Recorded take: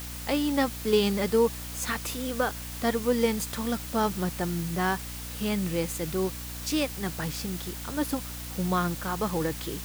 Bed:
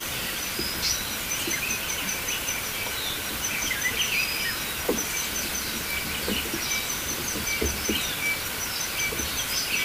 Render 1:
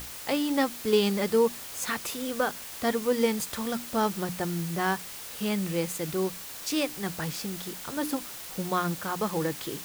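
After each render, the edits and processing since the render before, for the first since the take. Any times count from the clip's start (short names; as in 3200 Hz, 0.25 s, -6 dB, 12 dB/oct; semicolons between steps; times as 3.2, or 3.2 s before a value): notches 60/120/180/240/300 Hz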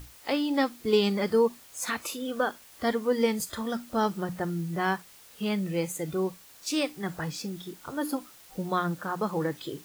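noise print and reduce 12 dB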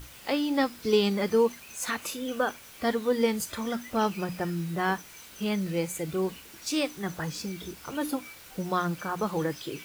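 add bed -21 dB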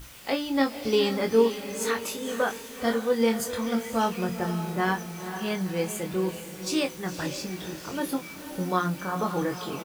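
doubler 22 ms -5.5 dB; diffused feedback echo 0.495 s, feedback 44%, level -9.5 dB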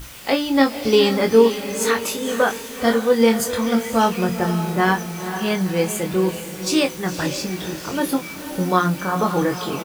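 gain +8 dB; limiter -2 dBFS, peak gain reduction 1 dB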